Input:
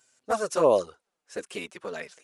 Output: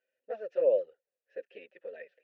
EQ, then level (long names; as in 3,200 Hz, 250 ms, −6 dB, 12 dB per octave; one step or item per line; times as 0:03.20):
formant filter e
high-frequency loss of the air 260 metres
0.0 dB